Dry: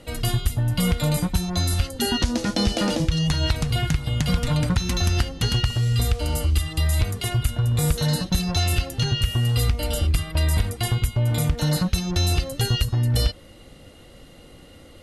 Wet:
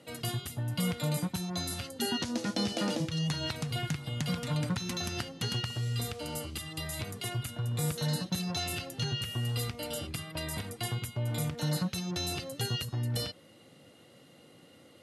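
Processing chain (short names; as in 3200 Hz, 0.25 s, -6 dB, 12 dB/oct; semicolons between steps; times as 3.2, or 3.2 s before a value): HPF 120 Hz 24 dB/oct; gain -8.5 dB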